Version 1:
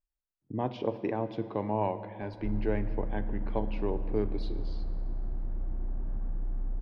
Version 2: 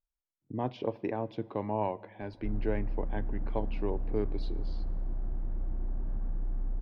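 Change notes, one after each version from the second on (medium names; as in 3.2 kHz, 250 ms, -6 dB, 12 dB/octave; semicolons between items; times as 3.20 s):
speech: send -11.5 dB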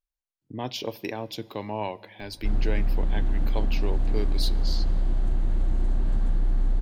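background +10.0 dB; master: remove low-pass 1.3 kHz 12 dB/octave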